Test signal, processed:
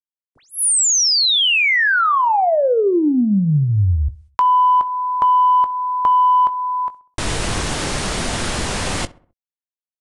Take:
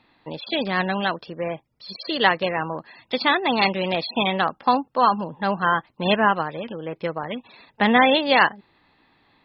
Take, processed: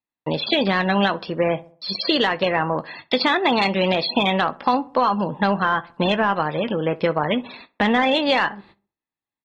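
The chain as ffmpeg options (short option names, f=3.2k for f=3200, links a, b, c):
-filter_complex "[0:a]agate=range=-44dB:threshold=-47dB:ratio=16:detection=peak,asplit=2[a][b];[b]acontrast=81,volume=-3dB[c];[a][c]amix=inputs=2:normalize=0,alimiter=limit=-8dB:level=0:latency=1:release=355,acompressor=threshold=-16dB:ratio=6,asplit=2[d][e];[e]adelay=20,volume=-14dB[f];[d][f]amix=inputs=2:normalize=0,asplit=2[g][h];[h]adelay=65,lowpass=f=1.7k:p=1,volume=-19.5dB,asplit=2[i][j];[j]adelay=65,lowpass=f=1.7k:p=1,volume=0.46,asplit=2[k][l];[l]adelay=65,lowpass=f=1.7k:p=1,volume=0.46,asplit=2[m][n];[n]adelay=65,lowpass=f=1.7k:p=1,volume=0.46[o];[i][k][m][o]amix=inputs=4:normalize=0[p];[g][p]amix=inputs=2:normalize=0,aresample=22050,aresample=44100,volume=1.5dB"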